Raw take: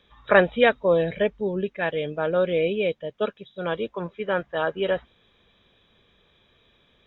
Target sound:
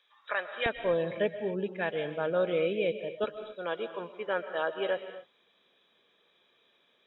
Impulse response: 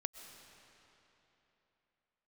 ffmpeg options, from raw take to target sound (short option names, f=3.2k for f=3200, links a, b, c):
-filter_complex "[0:a]asetnsamples=n=441:p=0,asendcmd='0.66 highpass f 150;3.24 highpass f 330',highpass=910,alimiter=limit=-12dB:level=0:latency=1:release=364[a];[1:a]atrim=start_sample=2205,afade=t=out:st=0.33:d=0.01,atrim=end_sample=14994[b];[a][b]afir=irnorm=-1:irlink=0,volume=-3.5dB"